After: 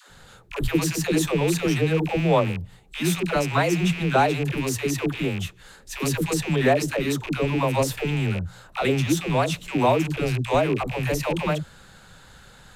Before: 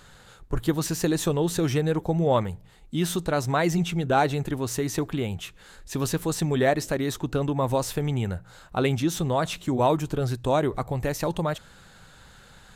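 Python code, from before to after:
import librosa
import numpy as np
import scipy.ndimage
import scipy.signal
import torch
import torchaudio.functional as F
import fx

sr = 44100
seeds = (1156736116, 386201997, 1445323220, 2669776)

y = fx.rattle_buzz(x, sr, strikes_db=-38.0, level_db=-24.0)
y = fx.dispersion(y, sr, late='lows', ms=100.0, hz=430.0)
y = F.gain(torch.from_numpy(y), 2.0).numpy()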